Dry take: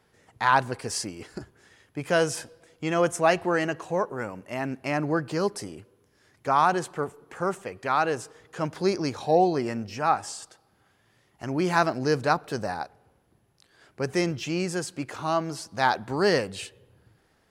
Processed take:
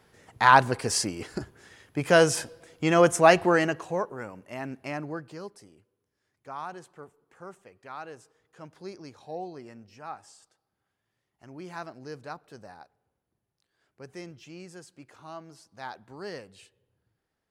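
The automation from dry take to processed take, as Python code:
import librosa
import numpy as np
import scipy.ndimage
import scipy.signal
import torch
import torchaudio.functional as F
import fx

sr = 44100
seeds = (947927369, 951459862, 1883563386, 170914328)

y = fx.gain(x, sr, db=fx.line((3.45, 4.0), (4.2, -5.5), (4.85, -5.5), (5.56, -16.5)))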